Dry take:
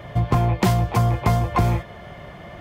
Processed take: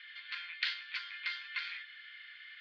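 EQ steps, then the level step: Chebyshev band-pass 1.5–4.5 kHz, order 4; tilt EQ +2.5 dB/octave; -5.5 dB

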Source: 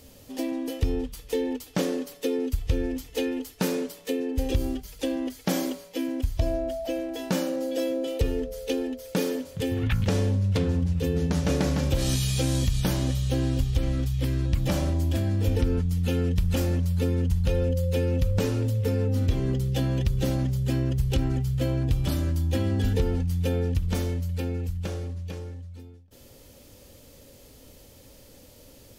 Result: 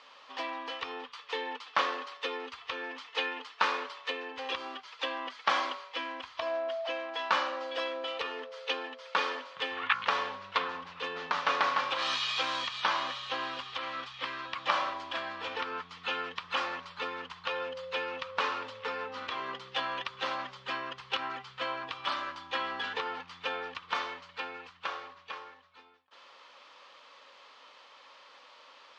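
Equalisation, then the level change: resonant high-pass 1.1 kHz, resonance Q 4.9; four-pole ladder low-pass 4.7 kHz, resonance 25%; distance through air 61 m; +8.5 dB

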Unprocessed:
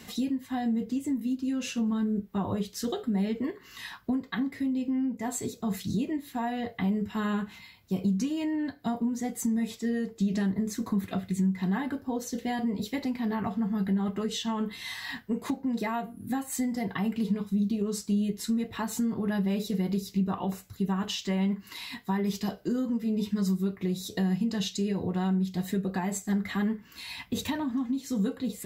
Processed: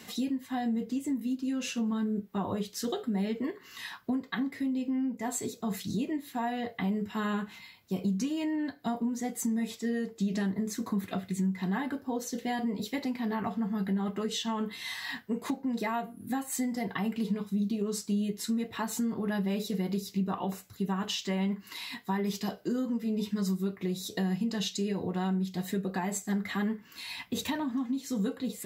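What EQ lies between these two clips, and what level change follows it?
high-pass 200 Hz 6 dB/octave; 0.0 dB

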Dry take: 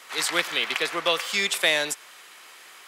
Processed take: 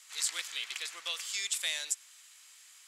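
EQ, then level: band-pass filter 7.5 kHz, Q 0.84; peaking EQ 7.3 kHz +5 dB 0.27 oct; -4.5 dB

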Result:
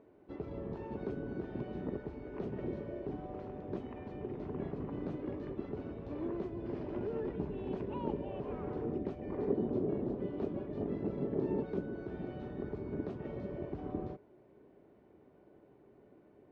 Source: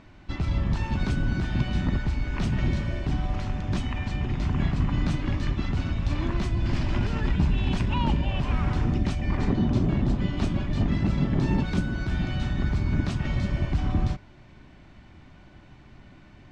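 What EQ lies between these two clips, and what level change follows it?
resonant low-pass 440 Hz, resonance Q 4.9; differentiator; +15.5 dB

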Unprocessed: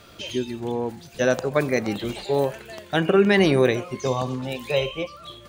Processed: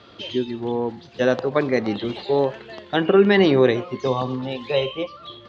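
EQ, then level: cabinet simulation 110–4200 Hz, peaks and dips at 160 Hz -7 dB, 630 Hz -4 dB, 1.5 kHz -4 dB, 2.4 kHz -7 dB; +3.5 dB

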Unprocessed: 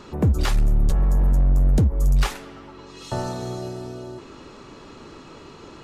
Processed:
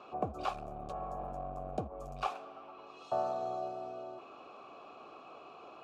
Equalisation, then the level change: dynamic bell 2.5 kHz, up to -6 dB, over -51 dBFS, Q 1.7; vowel filter a; +5.0 dB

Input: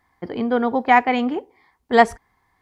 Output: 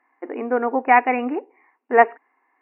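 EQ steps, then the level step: brick-wall FIR band-pass 240–2900 Hz; 0.0 dB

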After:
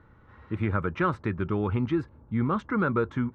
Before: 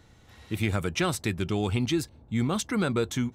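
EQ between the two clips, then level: resonant low-pass 1.3 kHz, resonance Q 2.1; peaking EQ 720 Hz -12 dB 0.22 oct; 0.0 dB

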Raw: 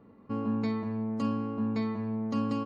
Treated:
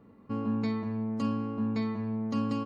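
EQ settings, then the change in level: peaking EQ 620 Hz -3 dB 2.9 oct; +1.5 dB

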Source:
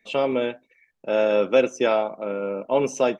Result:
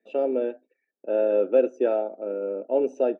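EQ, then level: boxcar filter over 41 samples; high-pass 290 Hz 24 dB/octave; +2.5 dB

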